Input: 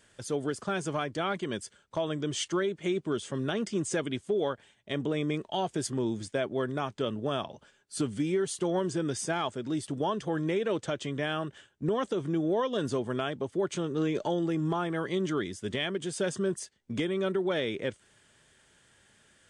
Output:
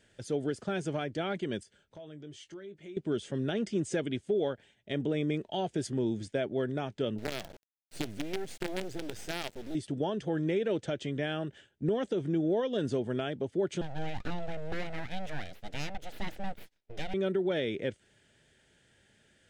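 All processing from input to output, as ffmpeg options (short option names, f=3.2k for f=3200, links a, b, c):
-filter_complex "[0:a]asettb=1/sr,asplit=3[a][b][c];[a]atrim=end=1.634[d];[b]atrim=start=1.63:end=2.97,asetpts=PTS-STARTPTS,afade=t=in:d=0.004:c=qsin,afade=t=out:st=1.336:d=0.004:c=qsin,acompressor=threshold=-56dB:ratio=2:attack=3.2:release=140:knee=1:detection=peak,asplit=2[e][f];[f]adelay=20,volume=-11dB[g];[e][g]amix=inputs=2:normalize=0,atrim=end_sample=59094[h];[c]atrim=start=2.966[i];[d][h]acrossfade=d=0.004:c1=hsin:c2=qsin[j];[j][i]acrossfade=d=0.004:c1=qsin:c2=hsin,asettb=1/sr,asplit=3[k][l][m];[k]atrim=end=7.184[n];[l]atrim=start=7.18:end=9.75,asetpts=PTS-STARTPTS,afade=t=in:d=0.004:c=qsin,afade=t=out:st=2.566:d=0.004:c=qsin,acompressor=threshold=-33dB:ratio=1.5:attack=3.2:release=140:knee=1:detection=peak,acrusher=bits=5:dc=4:mix=0:aa=0.000001[o];[m]atrim=start=9.746[p];[n][o]acrossfade=d=0.004:c1=hsin:c2=qsin[q];[q][p]acrossfade=d=0.004:c1=qsin:c2=hsin,asettb=1/sr,asplit=3[r][s][t];[r]atrim=end=13.814[u];[s]atrim=start=13.81:end=17.14,asetpts=PTS-STARTPTS,afade=t=in:d=0.004:c=qsin,afade=t=out:st=3.326:d=0.004:c=qsin,bass=f=250:g=-10,treble=f=4k:g=-4,aeval=exprs='abs(val(0))':c=same[v];[t]atrim=start=17.136[w];[u][v]acrossfade=d=0.004:c1=hsin:c2=qsin[x];[x][w]acrossfade=d=0.004:c1=qsin:c2=hsin,lowpass=f=3.4k:p=1,equalizer=f=1.1k:w=2.6:g=-13"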